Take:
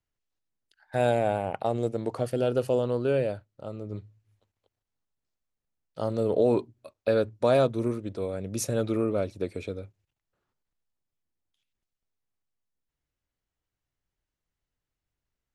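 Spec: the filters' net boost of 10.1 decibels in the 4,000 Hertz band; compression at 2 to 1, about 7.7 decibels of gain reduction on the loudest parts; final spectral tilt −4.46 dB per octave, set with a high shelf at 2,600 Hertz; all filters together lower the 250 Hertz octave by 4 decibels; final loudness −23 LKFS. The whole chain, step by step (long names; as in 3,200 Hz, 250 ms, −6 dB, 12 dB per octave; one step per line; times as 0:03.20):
parametric band 250 Hz −5.5 dB
high-shelf EQ 2,600 Hz +7.5 dB
parametric band 4,000 Hz +6 dB
downward compressor 2 to 1, threshold −32 dBFS
level +11 dB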